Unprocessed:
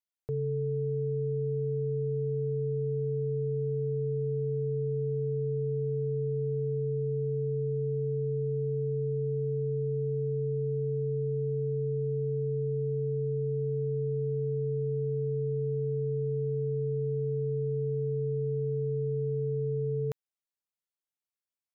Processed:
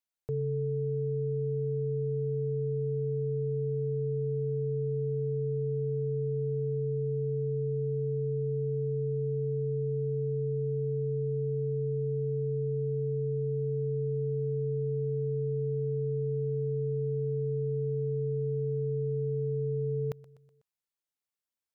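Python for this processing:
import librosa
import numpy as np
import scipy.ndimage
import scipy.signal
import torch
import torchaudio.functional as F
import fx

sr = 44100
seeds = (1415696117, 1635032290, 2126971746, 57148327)

y = fx.echo_feedback(x, sr, ms=124, feedback_pct=53, wet_db=-19.5)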